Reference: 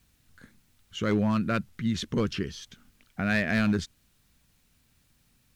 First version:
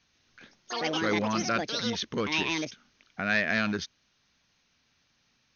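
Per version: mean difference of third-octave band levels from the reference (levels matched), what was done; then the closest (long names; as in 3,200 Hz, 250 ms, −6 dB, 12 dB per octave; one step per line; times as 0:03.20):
8.0 dB: low-shelf EQ 350 Hz −10.5 dB
delay with pitch and tempo change per echo 134 ms, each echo +7 semitones, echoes 3
linear-phase brick-wall low-pass 6,600 Hz
low-shelf EQ 66 Hz −11 dB
level +2.5 dB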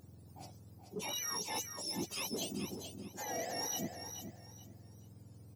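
16.0 dB: frequency axis turned over on the octave scale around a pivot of 1,100 Hz
reversed playback
downward compressor 6 to 1, threshold −40 dBFS, peak gain reduction 15.5 dB
reversed playback
soft clipping −35 dBFS, distortion −18 dB
repeating echo 429 ms, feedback 26%, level −8 dB
level +4 dB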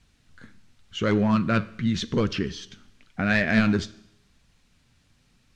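2.5 dB: low-pass filter 6,400 Hz 12 dB per octave
flanger 0.89 Hz, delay 0.9 ms, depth 9.9 ms, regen +71%
four-comb reverb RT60 0.79 s, combs from 28 ms, DRR 17 dB
level +8.5 dB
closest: third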